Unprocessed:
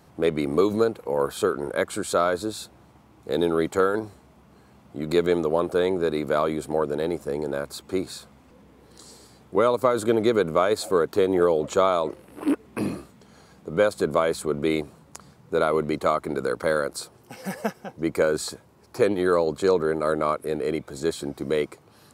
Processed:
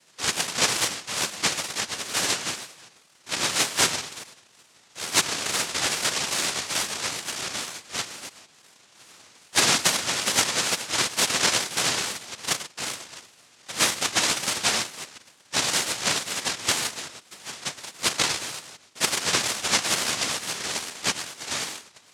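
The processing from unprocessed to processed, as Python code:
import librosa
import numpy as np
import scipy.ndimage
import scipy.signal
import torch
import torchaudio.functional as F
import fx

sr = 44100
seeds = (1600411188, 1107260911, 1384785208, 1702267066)

p1 = fx.reverse_delay(x, sr, ms=169, wet_db=-9.5)
p2 = fx.hum_notches(p1, sr, base_hz=60, count=6)
p3 = p2 + fx.echo_single(p2, sr, ms=112, db=-12.0, dry=0)
p4 = fx.chorus_voices(p3, sr, voices=6, hz=0.87, base_ms=10, depth_ms=2.8, mix_pct=50)
p5 = (np.kron(p4[::4], np.eye(4)[0]) * 4)[:len(p4)]
p6 = fx.noise_vocoder(p5, sr, seeds[0], bands=1)
p7 = fx.wow_flutter(p6, sr, seeds[1], rate_hz=2.1, depth_cents=140.0)
p8 = fx.band_squash(p7, sr, depth_pct=70, at=(6.16, 6.93))
y = p8 * 10.0 ** (-1.5 / 20.0)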